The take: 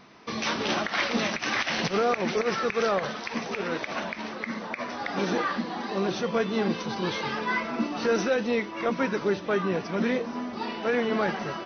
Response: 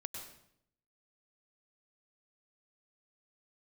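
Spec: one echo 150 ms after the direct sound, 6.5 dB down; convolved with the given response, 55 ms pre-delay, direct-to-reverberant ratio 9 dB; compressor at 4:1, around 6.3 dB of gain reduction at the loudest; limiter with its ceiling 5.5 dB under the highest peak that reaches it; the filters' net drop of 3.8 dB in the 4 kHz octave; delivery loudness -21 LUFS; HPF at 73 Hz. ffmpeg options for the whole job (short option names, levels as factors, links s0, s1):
-filter_complex "[0:a]highpass=73,equalizer=f=4000:t=o:g=-5,acompressor=threshold=0.0398:ratio=4,alimiter=limit=0.0708:level=0:latency=1,aecho=1:1:150:0.473,asplit=2[s0][s1];[1:a]atrim=start_sample=2205,adelay=55[s2];[s1][s2]afir=irnorm=-1:irlink=0,volume=0.447[s3];[s0][s3]amix=inputs=2:normalize=0,volume=3.55"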